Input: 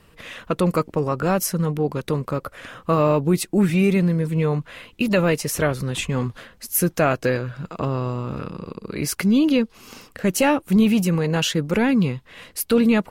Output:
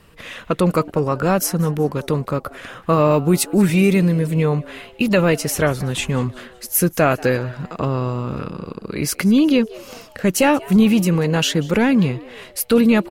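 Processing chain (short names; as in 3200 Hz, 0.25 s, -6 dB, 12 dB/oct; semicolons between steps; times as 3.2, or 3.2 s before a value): 3.11–4.43 high shelf 4900 Hz +6 dB; frequency-shifting echo 0.187 s, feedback 48%, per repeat +120 Hz, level -22 dB; gain +3 dB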